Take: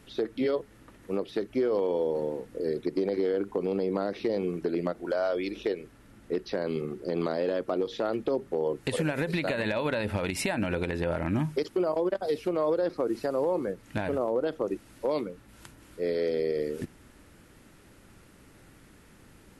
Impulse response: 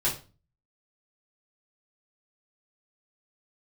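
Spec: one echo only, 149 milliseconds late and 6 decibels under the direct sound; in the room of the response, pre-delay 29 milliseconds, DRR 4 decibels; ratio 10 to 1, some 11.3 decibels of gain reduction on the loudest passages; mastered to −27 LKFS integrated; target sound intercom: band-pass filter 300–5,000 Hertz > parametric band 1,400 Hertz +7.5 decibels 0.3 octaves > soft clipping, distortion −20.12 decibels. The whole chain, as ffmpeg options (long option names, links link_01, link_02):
-filter_complex "[0:a]acompressor=threshold=-35dB:ratio=10,aecho=1:1:149:0.501,asplit=2[link_01][link_02];[1:a]atrim=start_sample=2205,adelay=29[link_03];[link_02][link_03]afir=irnorm=-1:irlink=0,volume=-13dB[link_04];[link_01][link_04]amix=inputs=2:normalize=0,highpass=300,lowpass=5000,equalizer=frequency=1400:width_type=o:width=0.3:gain=7.5,asoftclip=threshold=-29dB,volume=12.5dB"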